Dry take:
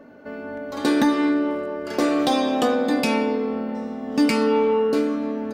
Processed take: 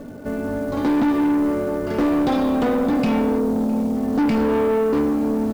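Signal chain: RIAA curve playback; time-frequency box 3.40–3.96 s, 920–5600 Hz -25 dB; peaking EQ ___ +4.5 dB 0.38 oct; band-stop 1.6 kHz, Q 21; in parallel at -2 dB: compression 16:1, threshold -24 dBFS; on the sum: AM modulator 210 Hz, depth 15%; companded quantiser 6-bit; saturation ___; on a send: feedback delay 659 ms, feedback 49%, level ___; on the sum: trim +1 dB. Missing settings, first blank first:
130 Hz, -16.5 dBFS, -22 dB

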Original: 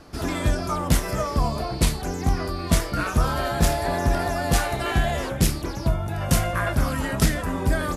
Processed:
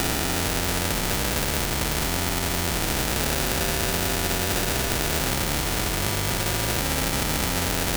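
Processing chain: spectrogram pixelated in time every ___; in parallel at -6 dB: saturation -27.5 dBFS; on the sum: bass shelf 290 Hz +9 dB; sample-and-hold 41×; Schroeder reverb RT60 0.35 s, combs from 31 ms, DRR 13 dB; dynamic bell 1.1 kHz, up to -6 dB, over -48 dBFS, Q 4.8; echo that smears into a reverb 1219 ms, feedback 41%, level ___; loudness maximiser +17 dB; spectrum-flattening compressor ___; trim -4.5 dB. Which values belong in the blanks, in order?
400 ms, -13 dB, 2:1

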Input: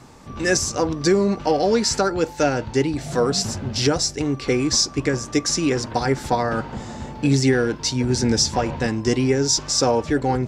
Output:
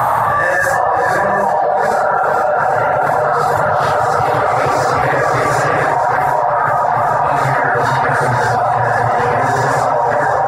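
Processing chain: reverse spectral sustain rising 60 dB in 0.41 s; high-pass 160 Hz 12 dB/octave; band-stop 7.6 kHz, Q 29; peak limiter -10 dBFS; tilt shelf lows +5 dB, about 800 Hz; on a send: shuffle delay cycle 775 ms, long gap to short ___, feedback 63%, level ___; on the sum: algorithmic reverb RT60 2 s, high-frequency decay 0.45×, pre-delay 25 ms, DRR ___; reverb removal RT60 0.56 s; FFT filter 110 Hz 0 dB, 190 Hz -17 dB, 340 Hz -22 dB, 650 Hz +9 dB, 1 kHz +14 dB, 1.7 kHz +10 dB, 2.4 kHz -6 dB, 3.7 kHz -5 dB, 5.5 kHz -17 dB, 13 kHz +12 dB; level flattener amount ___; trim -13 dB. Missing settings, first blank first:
1.5:1, -6.5 dB, -9 dB, 100%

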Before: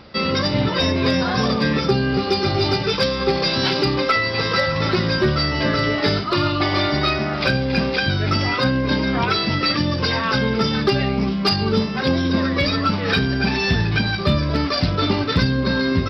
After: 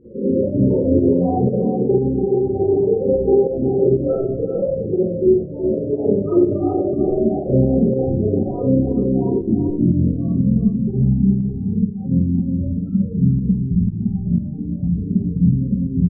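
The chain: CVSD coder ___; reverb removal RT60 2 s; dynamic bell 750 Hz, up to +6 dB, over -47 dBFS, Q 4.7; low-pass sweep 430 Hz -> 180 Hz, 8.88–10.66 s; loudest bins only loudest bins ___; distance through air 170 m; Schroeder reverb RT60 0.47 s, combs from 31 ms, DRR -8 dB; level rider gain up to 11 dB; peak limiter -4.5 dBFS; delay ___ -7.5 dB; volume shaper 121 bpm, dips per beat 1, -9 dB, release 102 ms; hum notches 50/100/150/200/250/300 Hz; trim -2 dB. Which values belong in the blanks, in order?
16 kbps, 16, 375 ms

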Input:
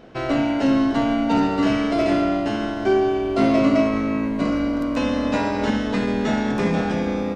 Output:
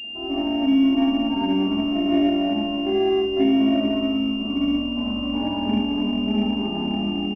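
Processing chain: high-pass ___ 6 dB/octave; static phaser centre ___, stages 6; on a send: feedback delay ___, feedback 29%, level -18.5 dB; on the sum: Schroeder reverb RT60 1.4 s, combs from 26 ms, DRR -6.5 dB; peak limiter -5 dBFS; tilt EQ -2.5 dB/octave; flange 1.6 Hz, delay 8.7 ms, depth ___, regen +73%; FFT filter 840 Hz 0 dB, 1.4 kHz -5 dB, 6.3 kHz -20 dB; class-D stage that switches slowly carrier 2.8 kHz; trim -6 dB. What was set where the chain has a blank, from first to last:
120 Hz, 520 Hz, 457 ms, 2 ms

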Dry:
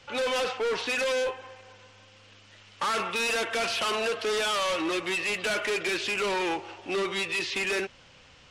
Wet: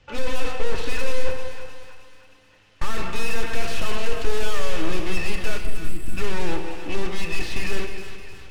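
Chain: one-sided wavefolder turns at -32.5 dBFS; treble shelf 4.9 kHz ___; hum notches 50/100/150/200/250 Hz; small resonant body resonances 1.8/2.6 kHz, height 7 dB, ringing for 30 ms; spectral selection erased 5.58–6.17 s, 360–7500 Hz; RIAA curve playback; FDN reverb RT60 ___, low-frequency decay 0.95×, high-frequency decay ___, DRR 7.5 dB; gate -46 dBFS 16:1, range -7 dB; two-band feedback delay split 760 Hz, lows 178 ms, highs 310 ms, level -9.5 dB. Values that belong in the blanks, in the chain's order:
+11.5 dB, 1.5 s, 0.8×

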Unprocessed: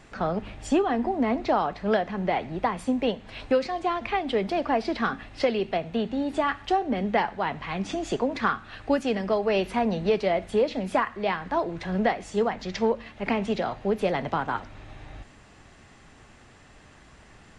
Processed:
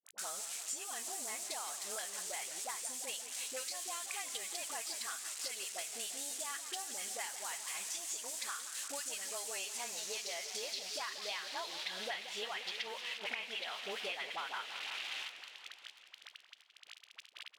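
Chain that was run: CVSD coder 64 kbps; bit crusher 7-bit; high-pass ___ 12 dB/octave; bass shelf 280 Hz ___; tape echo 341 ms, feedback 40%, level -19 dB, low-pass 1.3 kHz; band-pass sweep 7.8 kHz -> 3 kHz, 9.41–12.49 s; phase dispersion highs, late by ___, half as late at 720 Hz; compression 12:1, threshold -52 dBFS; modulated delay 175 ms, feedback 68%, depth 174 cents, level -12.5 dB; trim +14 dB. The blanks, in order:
160 Hz, -9.5 dB, 59 ms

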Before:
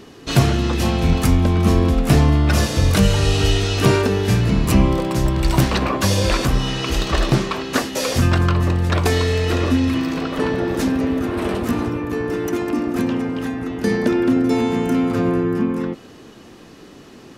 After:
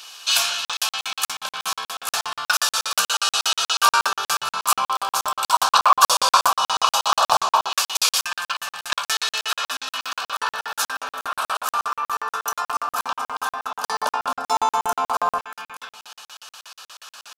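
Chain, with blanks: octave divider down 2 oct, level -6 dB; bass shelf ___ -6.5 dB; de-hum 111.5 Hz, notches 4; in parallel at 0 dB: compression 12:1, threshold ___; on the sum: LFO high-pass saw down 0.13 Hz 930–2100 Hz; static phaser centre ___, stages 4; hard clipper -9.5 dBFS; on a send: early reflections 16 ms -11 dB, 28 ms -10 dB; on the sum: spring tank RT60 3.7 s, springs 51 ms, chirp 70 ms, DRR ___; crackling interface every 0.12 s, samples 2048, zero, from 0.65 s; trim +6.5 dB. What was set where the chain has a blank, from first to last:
120 Hz, -31 dBFS, 820 Hz, 14.5 dB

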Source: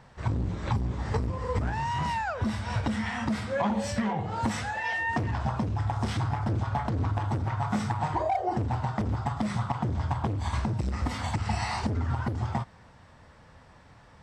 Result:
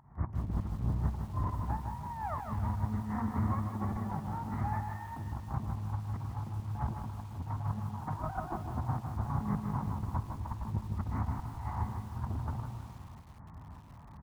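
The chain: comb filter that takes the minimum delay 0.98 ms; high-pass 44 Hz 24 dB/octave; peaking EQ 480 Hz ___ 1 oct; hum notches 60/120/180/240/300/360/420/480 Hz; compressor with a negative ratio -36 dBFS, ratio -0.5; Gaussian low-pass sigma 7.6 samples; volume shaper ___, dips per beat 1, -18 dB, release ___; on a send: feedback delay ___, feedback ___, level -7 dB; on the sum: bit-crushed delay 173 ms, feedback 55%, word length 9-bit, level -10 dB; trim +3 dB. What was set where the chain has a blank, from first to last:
-10 dB, 100 bpm, 292 ms, 154 ms, 39%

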